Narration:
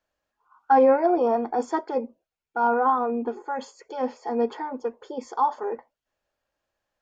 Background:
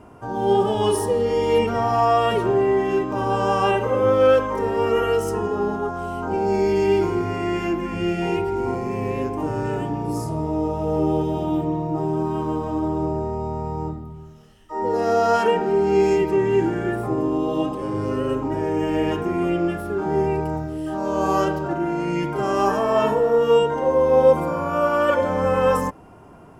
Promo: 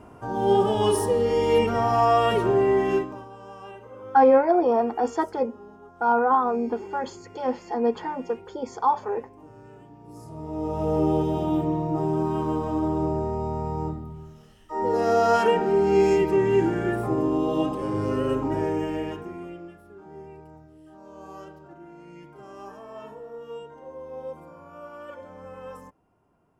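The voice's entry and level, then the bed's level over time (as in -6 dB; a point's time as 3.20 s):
3.45 s, +1.0 dB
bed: 2.96 s -1.5 dB
3.30 s -22.5 dB
9.98 s -22.5 dB
10.81 s -1.5 dB
18.63 s -1.5 dB
19.77 s -22 dB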